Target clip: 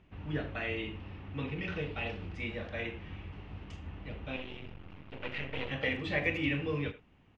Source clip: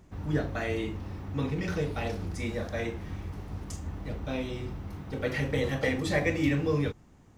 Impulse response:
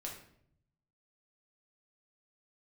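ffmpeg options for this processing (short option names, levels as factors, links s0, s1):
-filter_complex "[0:a]asettb=1/sr,asplit=3[s0][s1][s2];[s0]atrim=end=4.364[s3];[s1]atrim=start=4.36:end=5.71,asetpts=PTS-STARTPTS,afade=t=in:d=0.004:c=qsin,afade=t=out:st=1.346:d=0.004:c=qsin,aeval=exprs='max(val(0),0)':c=same[s4];[s2]atrim=start=5.706[s5];[s3][s4]acrossfade=d=0.004:c1=hsin:c2=qsin[s6];[s6][s5]acrossfade=d=0.004:c1=qsin:c2=hsin,lowpass=f=2800:t=q:w=4,asplit=2[s7][s8];[s8]adelay=80,highpass=300,lowpass=3400,asoftclip=type=hard:threshold=0.141,volume=0.2[s9];[s7][s9]amix=inputs=2:normalize=0,volume=0.447"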